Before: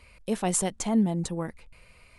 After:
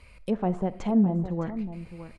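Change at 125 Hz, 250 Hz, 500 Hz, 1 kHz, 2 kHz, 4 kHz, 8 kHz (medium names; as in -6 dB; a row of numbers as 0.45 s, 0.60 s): +3.0 dB, +2.5 dB, +1.0 dB, -0.5 dB, no reading, under -10 dB, under -25 dB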